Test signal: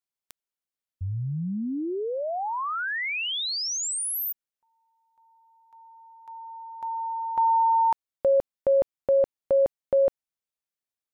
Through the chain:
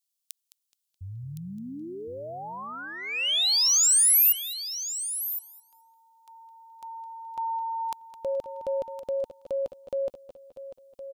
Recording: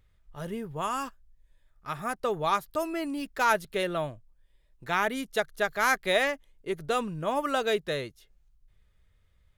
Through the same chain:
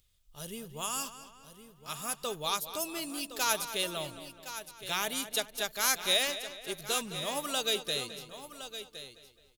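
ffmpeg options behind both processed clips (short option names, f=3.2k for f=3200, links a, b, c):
-filter_complex "[0:a]asplit=2[a][b];[b]adelay=212,lowpass=f=4.7k:p=1,volume=-12dB,asplit=2[c][d];[d]adelay=212,lowpass=f=4.7k:p=1,volume=0.49,asplit=2[e][f];[f]adelay=212,lowpass=f=4.7k:p=1,volume=0.49,asplit=2[g][h];[h]adelay=212,lowpass=f=4.7k:p=1,volume=0.49,asplit=2[i][j];[j]adelay=212,lowpass=f=4.7k:p=1,volume=0.49[k];[c][e][g][i][k]amix=inputs=5:normalize=0[l];[a][l]amix=inputs=2:normalize=0,aexciter=amount=3.6:drive=8.9:freq=2.7k,asplit=2[m][n];[n]aecho=0:1:1064:0.251[o];[m][o]amix=inputs=2:normalize=0,volume=-8.5dB"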